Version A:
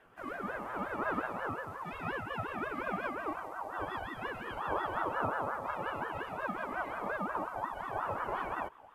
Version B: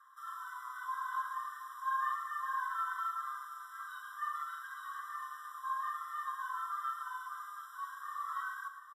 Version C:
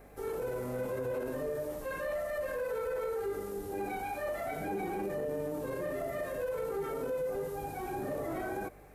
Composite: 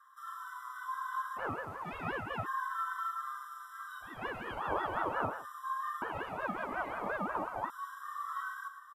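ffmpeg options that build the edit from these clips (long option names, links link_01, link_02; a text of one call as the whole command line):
ffmpeg -i take0.wav -i take1.wav -filter_complex "[0:a]asplit=3[link_01][link_02][link_03];[1:a]asplit=4[link_04][link_05][link_06][link_07];[link_04]atrim=end=1.4[link_08];[link_01]atrim=start=1.36:end=2.47[link_09];[link_05]atrim=start=2.43:end=4.24[link_10];[link_02]atrim=start=4:end=5.46[link_11];[link_06]atrim=start=5.22:end=6.022[link_12];[link_03]atrim=start=6.018:end=7.702[link_13];[link_07]atrim=start=7.698[link_14];[link_08][link_09]acrossfade=duration=0.04:curve1=tri:curve2=tri[link_15];[link_15][link_10]acrossfade=duration=0.04:curve1=tri:curve2=tri[link_16];[link_16][link_11]acrossfade=duration=0.24:curve1=tri:curve2=tri[link_17];[link_17][link_12]acrossfade=duration=0.24:curve1=tri:curve2=tri[link_18];[link_18][link_13]acrossfade=duration=0.004:curve1=hsin:curve2=hsin[link_19];[link_19][link_14]acrossfade=duration=0.004:curve1=hsin:curve2=hsin" out.wav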